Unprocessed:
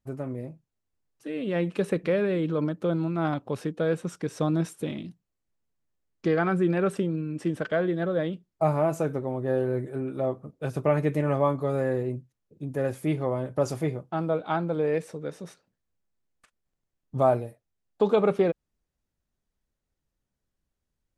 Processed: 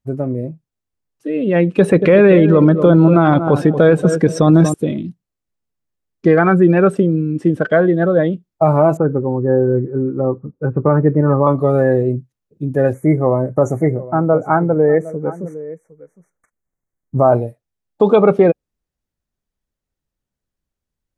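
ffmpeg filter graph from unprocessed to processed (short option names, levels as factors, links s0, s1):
-filter_complex "[0:a]asettb=1/sr,asplit=3[s0][s1][s2];[s0]atrim=end=1.784[s3];[s1]atrim=start=1.78:end=4.74,asetpts=PTS-STARTPTS,afade=t=in:d=0.004:c=qsin,afade=t=out:st=2.956:d=0.004:c=qsin,acontrast=74,asplit=2[s4][s5];[s5]adelay=233,lowpass=f=3500:p=1,volume=0.251,asplit=2[s6][s7];[s7]adelay=233,lowpass=f=3500:p=1,volume=0.3,asplit=2[s8][s9];[s9]adelay=233,lowpass=f=3500:p=1,volume=0.3[s10];[s4][s6][s8][s10]amix=inputs=4:normalize=0,atrim=end_sample=130536[s11];[s2]atrim=start=4.736[s12];[s3][s11]acrossfade=d=0.004:c1=hsin:c2=qsin[s13];[s13][s12]acrossfade=d=0.004:c1=qsin:c2=hsin,asettb=1/sr,asplit=3[s14][s15][s16];[s14]atrim=end=8.974[s17];[s15]atrim=start=8.97:end=11.47,asetpts=PTS-STARTPTS,afade=t=in:d=0.004:c=qsin,afade=t=out:st=2.496:d=0.004:c=qsin,lowpass=f=1600:w=0.5412,lowpass=f=1600:w=1.3066,equalizer=f=660:w=6:g=-14.5[s18];[s16]atrim=start=11.466[s19];[s17][s18]acrossfade=d=0.004:c1=hsin:c2=qsin[s20];[s20][s19]acrossfade=d=0.004:c1=qsin:c2=hsin,asettb=1/sr,asplit=3[s21][s22][s23];[s21]atrim=end=12.934[s24];[s22]atrim=start=12.93:end=17.32,asetpts=PTS-STARTPTS,afade=t=in:d=0.004:c=qsin,afade=t=out:st=4.386:d=0.004:c=qsin,asuperstop=centerf=3700:order=20:qfactor=1,aecho=1:1:759:0.168,atrim=end_sample=193599[s25];[s23]atrim=start=17.316[s26];[s24][s25]acrossfade=d=0.004:c1=hsin:c2=qsin[s27];[s27][s26]acrossfade=d=0.004:c1=qsin:c2=hsin,afftdn=nr=13:nf=-36,alimiter=level_in=5.01:limit=0.891:release=50:level=0:latency=1,volume=0.891"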